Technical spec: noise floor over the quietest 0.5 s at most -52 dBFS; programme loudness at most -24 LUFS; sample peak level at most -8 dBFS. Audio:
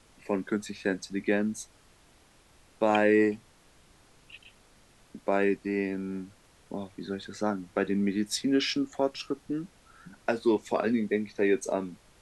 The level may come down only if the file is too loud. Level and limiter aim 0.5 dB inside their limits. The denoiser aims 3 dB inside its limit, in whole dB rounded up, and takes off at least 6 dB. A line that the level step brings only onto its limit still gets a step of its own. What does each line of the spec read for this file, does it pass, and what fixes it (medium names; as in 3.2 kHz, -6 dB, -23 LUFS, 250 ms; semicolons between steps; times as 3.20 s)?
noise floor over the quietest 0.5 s -60 dBFS: pass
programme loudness -29.5 LUFS: pass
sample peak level -11.5 dBFS: pass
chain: none needed